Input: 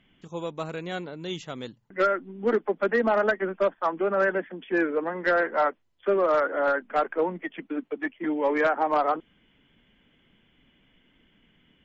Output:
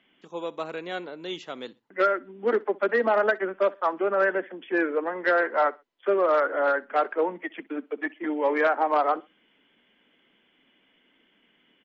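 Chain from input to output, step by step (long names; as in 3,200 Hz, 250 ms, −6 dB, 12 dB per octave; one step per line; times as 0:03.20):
three-way crossover with the lows and the highs turned down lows −24 dB, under 240 Hz, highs −13 dB, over 5,500 Hz
repeating echo 63 ms, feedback 27%, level −23 dB
level +1 dB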